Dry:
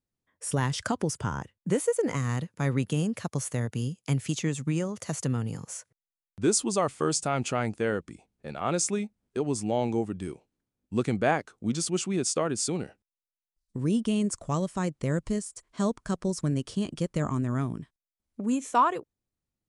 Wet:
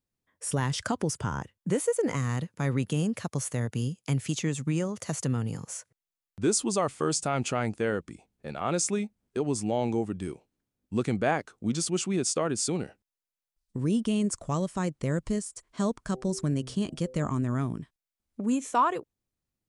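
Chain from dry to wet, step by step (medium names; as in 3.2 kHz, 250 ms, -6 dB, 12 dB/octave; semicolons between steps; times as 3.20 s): 16.08–17.25 s: de-hum 128.4 Hz, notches 6; in parallel at -3 dB: peak limiter -20.5 dBFS, peak gain reduction 9 dB; on the sum: trim -4 dB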